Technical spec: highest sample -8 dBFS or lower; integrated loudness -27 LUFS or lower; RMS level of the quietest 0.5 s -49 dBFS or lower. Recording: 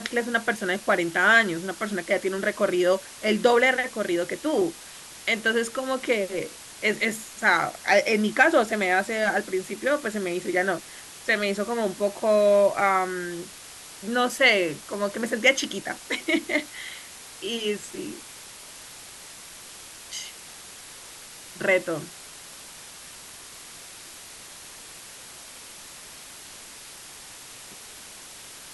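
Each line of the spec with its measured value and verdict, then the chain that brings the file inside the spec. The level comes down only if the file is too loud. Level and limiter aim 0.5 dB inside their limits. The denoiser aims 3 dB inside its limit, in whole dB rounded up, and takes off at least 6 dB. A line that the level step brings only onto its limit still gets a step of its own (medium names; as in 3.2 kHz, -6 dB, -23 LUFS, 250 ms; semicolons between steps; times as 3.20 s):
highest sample -5.5 dBFS: fail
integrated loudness -24.0 LUFS: fail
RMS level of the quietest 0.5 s -44 dBFS: fail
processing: noise reduction 6 dB, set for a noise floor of -44 dBFS; trim -3.5 dB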